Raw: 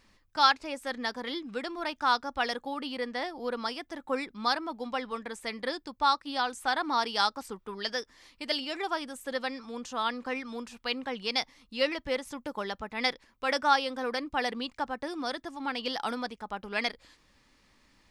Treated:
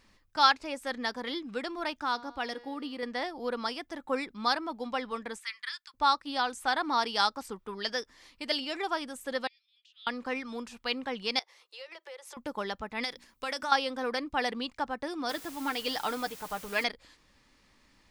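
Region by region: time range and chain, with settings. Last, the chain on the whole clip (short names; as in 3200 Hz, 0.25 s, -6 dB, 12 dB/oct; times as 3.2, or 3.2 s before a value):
2.02–3.03 bell 320 Hz +8.5 dB 0.63 oct + resonator 240 Hz, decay 1.4 s, mix 50% + short-mantissa float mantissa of 6-bit
5.38–5.94 inverse Chebyshev high-pass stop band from 650 Hz + high shelf 10000 Hz -5 dB
9.47–10.07 steep high-pass 2900 Hz + air absorption 430 m
11.39–12.37 steep high-pass 360 Hz 96 dB/oct + compressor, threshold -43 dBFS
13.03–13.72 high shelf 4100 Hz +11.5 dB + notches 60/120/180/240/300 Hz + compressor 4:1, threshold -31 dBFS
15.29–16.84 backlash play -50.5 dBFS + comb 6.6 ms, depth 49% + requantised 8-bit, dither triangular
whole clip: dry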